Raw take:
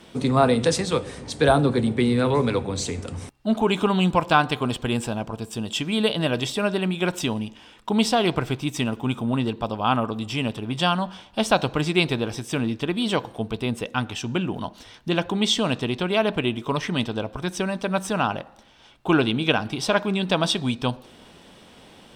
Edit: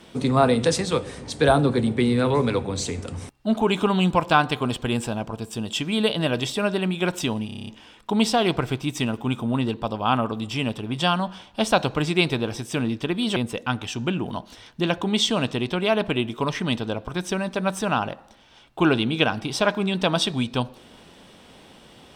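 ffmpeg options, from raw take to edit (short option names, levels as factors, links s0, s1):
-filter_complex "[0:a]asplit=9[s0][s1][s2][s3][s4][s5][s6][s7][s8];[s0]atrim=end=7.492[s9];[s1]atrim=start=7.458:end=7.492[s10];[s2]atrim=start=7.458:end=7.492[s11];[s3]atrim=start=7.458:end=7.492[s12];[s4]atrim=start=7.458:end=7.492[s13];[s5]atrim=start=7.458:end=7.492[s14];[s6]atrim=start=7.458:end=7.492[s15];[s7]atrim=start=7.458:end=13.152[s16];[s8]atrim=start=13.638[s17];[s9][s10]acrossfade=d=0.004:c1=hsin:c2=hsin[s18];[s18][s11]acrossfade=d=0.004:c1=hsin:c2=hsin[s19];[s19][s12]acrossfade=d=0.004:c1=hsin:c2=hsin[s20];[s20][s13]acrossfade=d=0.004:c1=hsin:c2=hsin[s21];[s21][s14]acrossfade=d=0.004:c1=hsin:c2=hsin[s22];[s22][s15]acrossfade=d=0.004:c1=hsin:c2=hsin[s23];[s23][s16]acrossfade=d=0.004:c1=hsin:c2=hsin[s24];[s24][s17]acrossfade=d=0.004:c1=hsin:c2=hsin"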